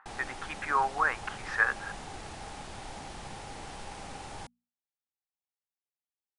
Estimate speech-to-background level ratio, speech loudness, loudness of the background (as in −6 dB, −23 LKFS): 13.0 dB, −30.5 LKFS, −43.5 LKFS